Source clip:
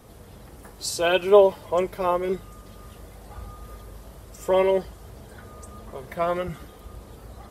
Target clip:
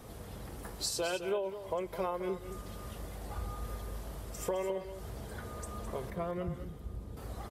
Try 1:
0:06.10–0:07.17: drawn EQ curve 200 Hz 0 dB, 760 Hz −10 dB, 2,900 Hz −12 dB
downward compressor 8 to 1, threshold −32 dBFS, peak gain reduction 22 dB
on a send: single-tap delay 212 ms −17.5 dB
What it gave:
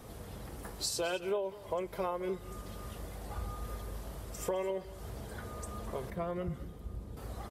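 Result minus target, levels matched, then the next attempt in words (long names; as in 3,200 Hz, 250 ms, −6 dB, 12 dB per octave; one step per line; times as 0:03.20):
echo-to-direct −6.5 dB
0:06.10–0:07.17: drawn EQ curve 200 Hz 0 dB, 760 Hz −10 dB, 2,900 Hz −12 dB
downward compressor 8 to 1, threshold −32 dBFS, peak gain reduction 22 dB
on a send: single-tap delay 212 ms −11 dB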